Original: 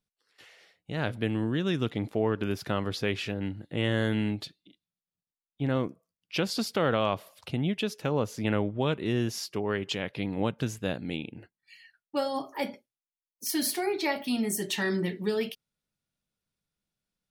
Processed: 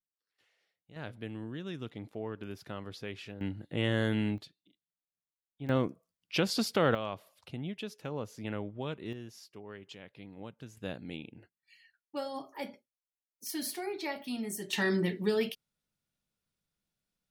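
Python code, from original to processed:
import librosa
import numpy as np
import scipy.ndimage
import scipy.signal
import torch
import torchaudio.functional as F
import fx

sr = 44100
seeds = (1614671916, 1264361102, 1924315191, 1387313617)

y = fx.gain(x, sr, db=fx.steps((0.0, -19.0), (0.96, -12.0), (3.41, -2.5), (4.38, -11.0), (5.69, -0.5), (6.95, -10.0), (9.13, -17.0), (10.77, -8.0), (14.73, -0.5)))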